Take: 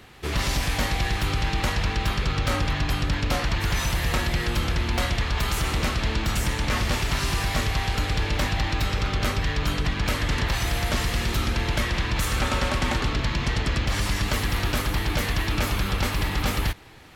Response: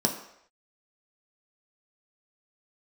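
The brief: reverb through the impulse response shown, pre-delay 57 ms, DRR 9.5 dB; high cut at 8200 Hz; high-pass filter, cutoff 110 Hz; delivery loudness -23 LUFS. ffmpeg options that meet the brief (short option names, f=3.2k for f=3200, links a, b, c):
-filter_complex "[0:a]highpass=110,lowpass=8.2k,asplit=2[a][b];[1:a]atrim=start_sample=2205,adelay=57[c];[b][c]afir=irnorm=-1:irlink=0,volume=-19.5dB[d];[a][d]amix=inputs=2:normalize=0,volume=3.5dB"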